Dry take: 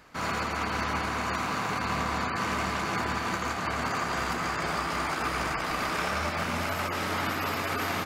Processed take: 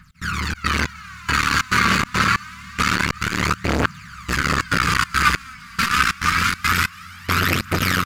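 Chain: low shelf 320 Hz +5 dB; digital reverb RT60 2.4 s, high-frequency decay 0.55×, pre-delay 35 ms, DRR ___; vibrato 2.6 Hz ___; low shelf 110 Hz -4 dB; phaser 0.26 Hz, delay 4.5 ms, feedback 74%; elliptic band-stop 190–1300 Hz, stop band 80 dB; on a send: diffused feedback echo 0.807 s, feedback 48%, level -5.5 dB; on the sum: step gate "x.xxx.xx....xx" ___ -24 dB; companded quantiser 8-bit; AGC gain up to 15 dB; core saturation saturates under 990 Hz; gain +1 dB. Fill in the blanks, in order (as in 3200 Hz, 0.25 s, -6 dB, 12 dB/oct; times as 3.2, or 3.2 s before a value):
10 dB, 15 cents, 140 bpm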